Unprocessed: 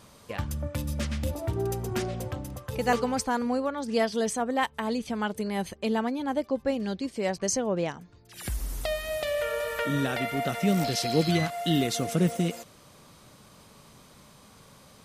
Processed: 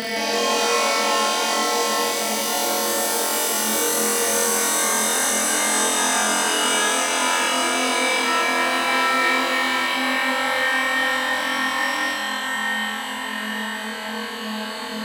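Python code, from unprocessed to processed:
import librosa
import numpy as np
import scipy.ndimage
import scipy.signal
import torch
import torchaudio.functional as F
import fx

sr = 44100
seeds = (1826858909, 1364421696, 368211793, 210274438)

p1 = fx.paulstretch(x, sr, seeds[0], factor=18.0, window_s=0.5, from_s=4.02)
p2 = fx.echo_pitch(p1, sr, ms=165, semitones=4, count=3, db_per_echo=-3.0)
p3 = fx.tilt_shelf(p2, sr, db=-6.5, hz=1400.0)
y = p3 + fx.room_flutter(p3, sr, wall_m=4.0, rt60_s=1.2, dry=0)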